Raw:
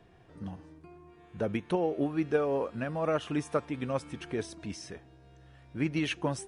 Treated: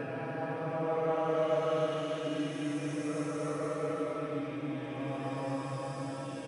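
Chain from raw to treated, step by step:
one-sided soft clipper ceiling −23 dBFS
high-pass filter 76 Hz
mains-hum notches 50/100/150/200/250/300 Hz
comb filter 6.2 ms
echo through a band-pass that steps 275 ms, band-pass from 410 Hz, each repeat 0.7 octaves, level −11 dB
convolution reverb RT60 0.40 s, pre-delay 4 ms, DRR 11 dB
extreme stretch with random phases 4.9×, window 0.50 s, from 0:02.80
level −3.5 dB

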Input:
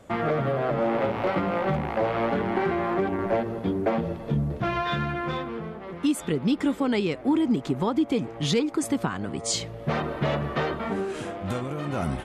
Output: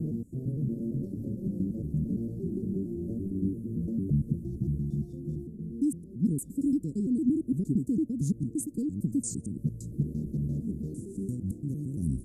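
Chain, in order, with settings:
slices reordered back to front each 114 ms, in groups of 3
inverse Chebyshev band-stop filter 900–2,800 Hz, stop band 70 dB

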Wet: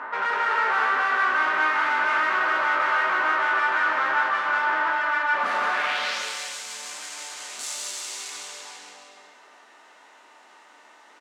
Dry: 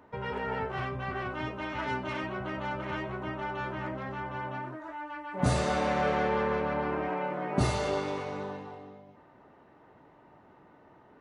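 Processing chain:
peak hold with a decay on every bin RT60 0.45 s
low shelf with overshoot 180 Hz −6.5 dB, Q 3
mid-hump overdrive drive 38 dB, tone 5,600 Hz, clips at −12.5 dBFS
band-pass filter sweep 1,400 Hz → 7,600 Hz, 0:05.70–0:06.28
on a send: bouncing-ball delay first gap 180 ms, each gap 0.85×, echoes 5

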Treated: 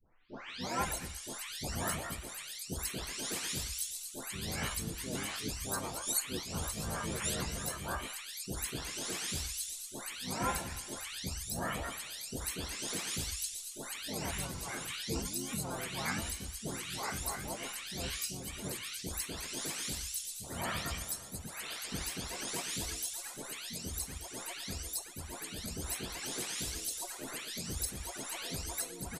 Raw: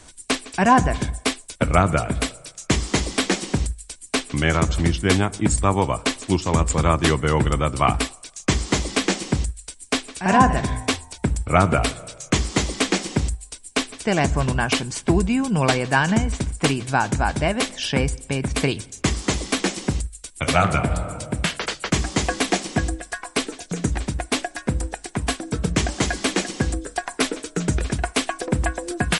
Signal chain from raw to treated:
every frequency bin delayed by itself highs late, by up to 630 ms
first-order pre-emphasis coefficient 0.8
pitch-shifted copies added −12 semitones −7 dB, −4 semitones −6 dB, +5 semitones −1 dB
level −8.5 dB

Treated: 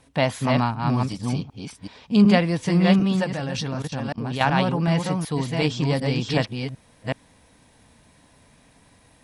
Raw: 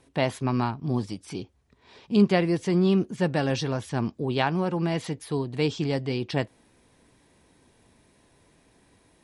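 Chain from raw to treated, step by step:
delay that plays each chunk backwards 375 ms, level −3 dB
parametric band 370 Hz −12 dB 0.37 octaves
0:03.24–0:04.41: output level in coarse steps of 16 dB
level +4.5 dB

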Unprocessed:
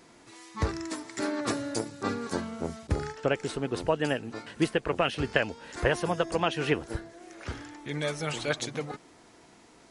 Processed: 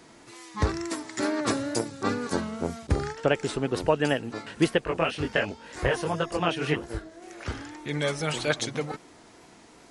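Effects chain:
0:04.85–0:07.22: multi-voice chorus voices 2, 1.5 Hz, delay 21 ms, depth 3 ms
tape wow and flutter 59 cents
level +3.5 dB

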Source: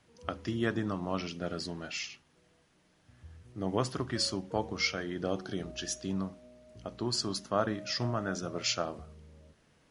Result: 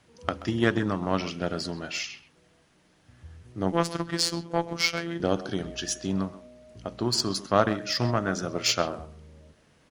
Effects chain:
far-end echo of a speakerphone 130 ms, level −12 dB
0:03.72–0:05.20: phases set to zero 169 Hz
harmonic generator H 7 −26 dB, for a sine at −13 dBFS
level +8.5 dB

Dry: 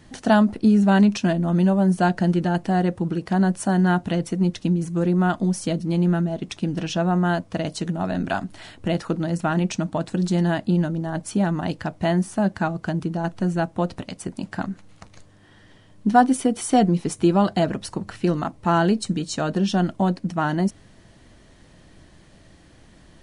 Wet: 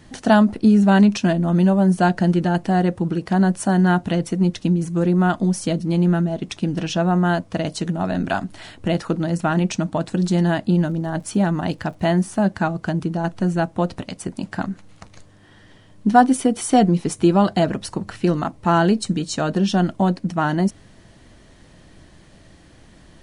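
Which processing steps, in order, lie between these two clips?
0:10.85–0:12.39: surface crackle 43 per second −43 dBFS
level +2.5 dB

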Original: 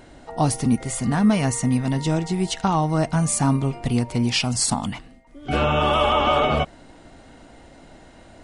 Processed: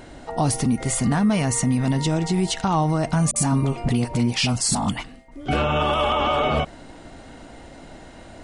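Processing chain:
brickwall limiter −17 dBFS, peak gain reduction 8.5 dB
0:03.31–0:05.46: all-pass dispersion highs, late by 49 ms, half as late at 560 Hz
level +4.5 dB

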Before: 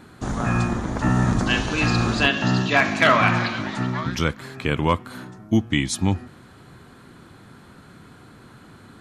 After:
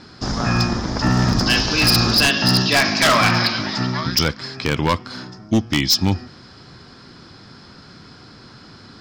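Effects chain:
low-pass with resonance 5,100 Hz, resonance Q 16
wave folding −10.5 dBFS
level +2.5 dB

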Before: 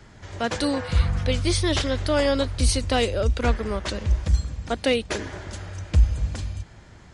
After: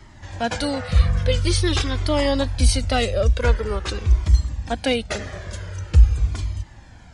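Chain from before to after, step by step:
flanger whose copies keep moving one way falling 0.46 Hz
level +6 dB

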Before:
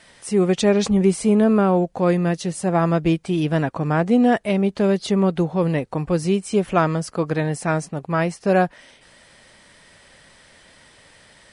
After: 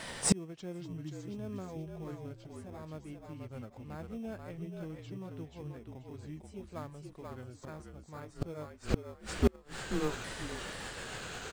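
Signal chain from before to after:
pitch shifter swept by a sawtooth −4.5 semitones, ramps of 1,280 ms
echo with shifted repeats 484 ms, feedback 31%, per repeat −48 Hz, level −3.5 dB
gate with flip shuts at −21 dBFS, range −34 dB
in parallel at −10 dB: sample-rate reduction 2,900 Hz, jitter 0%
on the sum: level +6.5 dB

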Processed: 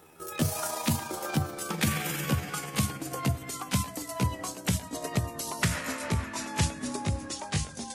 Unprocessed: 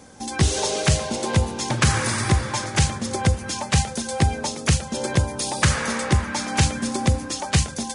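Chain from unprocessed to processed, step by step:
pitch glide at a constant tempo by +8.5 semitones ending unshifted
level −7.5 dB

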